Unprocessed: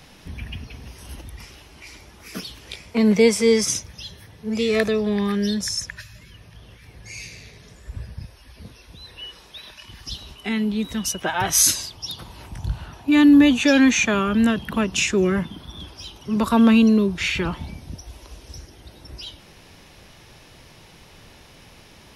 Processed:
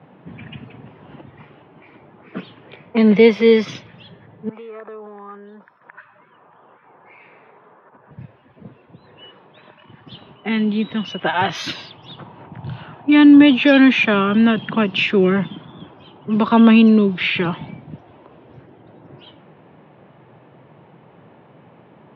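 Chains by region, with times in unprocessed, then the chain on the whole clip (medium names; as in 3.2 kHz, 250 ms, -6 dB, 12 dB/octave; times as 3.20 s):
4.49–8.11 s: high-order bell 1.1 kHz +9 dB 1.1 oct + compression 20:1, threshold -32 dBFS + band-pass 400–3200 Hz
whole clip: level-controlled noise filter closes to 980 Hz, open at -17 dBFS; elliptic band-pass 130–3400 Hz, stop band 40 dB; trim +5 dB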